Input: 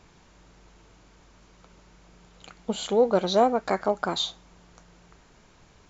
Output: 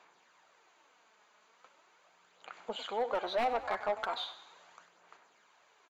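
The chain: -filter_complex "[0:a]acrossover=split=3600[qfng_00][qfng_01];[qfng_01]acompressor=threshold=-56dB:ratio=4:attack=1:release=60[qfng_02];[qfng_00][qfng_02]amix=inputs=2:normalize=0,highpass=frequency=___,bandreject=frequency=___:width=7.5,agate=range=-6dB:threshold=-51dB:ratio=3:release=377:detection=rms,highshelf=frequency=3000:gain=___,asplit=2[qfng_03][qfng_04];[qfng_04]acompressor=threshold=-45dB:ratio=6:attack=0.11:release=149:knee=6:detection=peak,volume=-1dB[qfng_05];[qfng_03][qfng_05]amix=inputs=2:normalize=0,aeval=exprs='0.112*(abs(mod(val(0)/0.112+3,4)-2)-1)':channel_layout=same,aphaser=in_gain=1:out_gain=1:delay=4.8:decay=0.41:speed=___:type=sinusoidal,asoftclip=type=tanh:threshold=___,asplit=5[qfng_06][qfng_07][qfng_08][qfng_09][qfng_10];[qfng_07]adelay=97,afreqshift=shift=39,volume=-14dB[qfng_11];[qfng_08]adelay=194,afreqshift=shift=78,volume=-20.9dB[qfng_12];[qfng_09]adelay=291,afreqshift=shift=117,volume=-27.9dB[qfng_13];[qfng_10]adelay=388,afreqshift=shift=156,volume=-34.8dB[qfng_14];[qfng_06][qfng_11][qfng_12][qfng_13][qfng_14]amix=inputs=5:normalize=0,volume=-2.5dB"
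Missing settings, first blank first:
790, 5400, -8, 0.39, -21.5dB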